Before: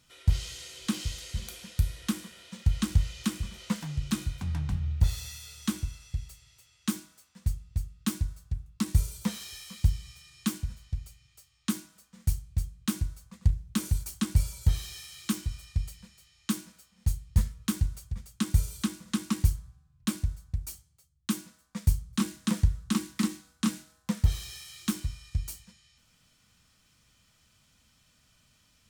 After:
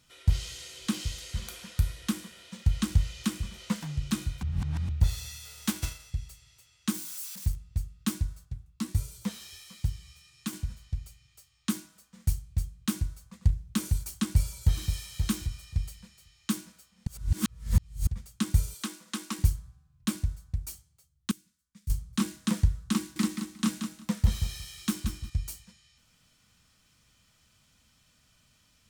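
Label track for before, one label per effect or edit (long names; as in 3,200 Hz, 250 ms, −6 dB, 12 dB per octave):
1.330000	1.930000	parametric band 1,200 Hz +5.5 dB 1.2 octaves
4.430000	4.890000	reverse
5.440000	6.090000	spectral envelope flattened exponent 0.6
6.940000	7.560000	spike at every zero crossing of −34 dBFS
8.450000	10.530000	flanger 1.5 Hz, delay 6 ms, depth 8.4 ms, regen +51%
14.240000	14.930000	delay throw 530 ms, feedback 15%, level −6.5 dB
17.070000	18.070000	reverse
18.740000	19.390000	high-pass filter 340 Hz
21.310000	21.900000	guitar amp tone stack bass-middle-treble 6-0-2
22.980000	25.300000	repeating echo 179 ms, feedback 17%, level −7.5 dB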